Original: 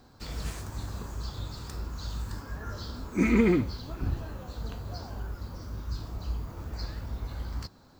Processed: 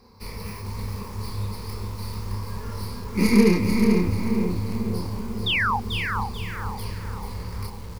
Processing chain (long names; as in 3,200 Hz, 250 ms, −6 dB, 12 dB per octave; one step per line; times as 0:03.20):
stylus tracing distortion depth 0.34 ms
EQ curve with evenly spaced ripples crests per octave 0.87, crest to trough 14 dB
sound drawn into the spectrogram fall, 0:05.46–0:05.77, 750–3,800 Hz −24 dBFS
double-tracking delay 29 ms −4 dB
feedback echo with a low-pass in the loop 495 ms, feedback 60%, low-pass 1,300 Hz, level −5.5 dB
feedback echo at a low word length 439 ms, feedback 35%, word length 7 bits, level −6 dB